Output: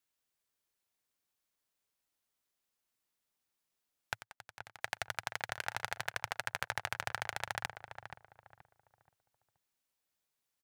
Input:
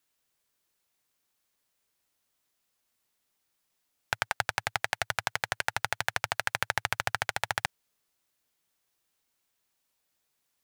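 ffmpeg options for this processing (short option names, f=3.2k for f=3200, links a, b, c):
-filter_complex "[0:a]asettb=1/sr,asplit=3[a][b][c];[a]atrim=end=4.154[d];[b]atrim=start=4.15:end=4.81,asetpts=PTS-STARTPTS,afade=t=in:d=0.004:c=qsin,afade=t=out:st=0.656:d=0.004:c=qsin,acompressor=threshold=-44dB:ratio=4[e];[c]atrim=start=4.806[f];[d][e]acrossfade=d=0.004:c1=hsin:c2=qsin[g];[g][f]acrossfade=d=0.004:c1=qsin:c2=hsin,asplit=3[h][i][j];[h]afade=t=out:st=5.52:d=0.02[k];[i]asplit=2[l][m];[m]adelay=35,volume=-14dB[n];[l][n]amix=inputs=2:normalize=0,afade=t=in:st=5.52:d=0.02,afade=t=out:st=5.95:d=0.02[o];[j]afade=t=in:st=5.95:d=0.02[p];[k][o][p]amix=inputs=3:normalize=0,asplit=2[q][r];[r]adelay=477,lowpass=f=1.4k:p=1,volume=-7dB,asplit=2[s][t];[t]adelay=477,lowpass=f=1.4k:p=1,volume=0.34,asplit=2[u][v];[v]adelay=477,lowpass=f=1.4k:p=1,volume=0.34,asplit=2[w][x];[x]adelay=477,lowpass=f=1.4k:p=1,volume=0.34[y];[q][s][u][w][y]amix=inputs=5:normalize=0,volume=-8dB"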